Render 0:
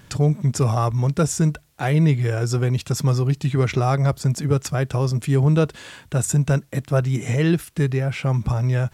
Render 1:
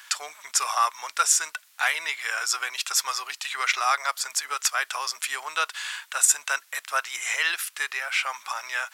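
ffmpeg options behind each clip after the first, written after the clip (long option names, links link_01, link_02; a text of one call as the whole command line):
ffmpeg -i in.wav -af "highpass=frequency=1100:width=0.5412,highpass=frequency=1100:width=1.3066,volume=7.5dB" out.wav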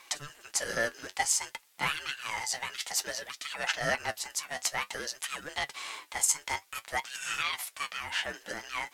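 ffmpeg -i in.wav -af "aeval=exprs='val(0)*sin(2*PI*590*n/s)':channel_layout=same,flanger=delay=5.6:depth=6.6:regen=53:speed=0.55:shape=triangular" out.wav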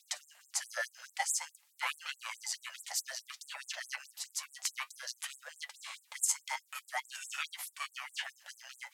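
ffmpeg -i in.wav -af "afftfilt=real='re*gte(b*sr/1024,490*pow(7500/490,0.5+0.5*sin(2*PI*4.7*pts/sr)))':imag='im*gte(b*sr/1024,490*pow(7500/490,0.5+0.5*sin(2*PI*4.7*pts/sr)))':win_size=1024:overlap=0.75,volume=-4.5dB" out.wav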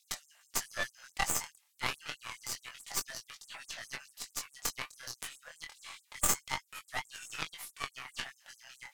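ffmpeg -i in.wav -af "flanger=delay=19:depth=6.2:speed=0.28,aeval=exprs='0.106*(cos(1*acos(clip(val(0)/0.106,-1,1)))-cos(1*PI/2))+0.0422*(cos(2*acos(clip(val(0)/0.106,-1,1)))-cos(2*PI/2))+0.0299*(cos(6*acos(clip(val(0)/0.106,-1,1)))-cos(6*PI/2))+0.00531*(cos(7*acos(clip(val(0)/0.106,-1,1)))-cos(7*PI/2))+0.0133*(cos(8*acos(clip(val(0)/0.106,-1,1)))-cos(8*PI/2))':channel_layout=same,volume=4dB" out.wav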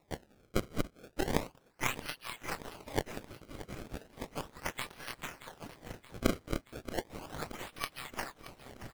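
ffmpeg -i in.wav -af "acrusher=samples=28:mix=1:aa=0.000001:lfo=1:lforange=44.8:lforate=0.35,aecho=1:1:626|1252|1878|2504|3130|3756:0.188|0.111|0.0656|0.0387|0.0228|0.0135,volume=1dB" out.wav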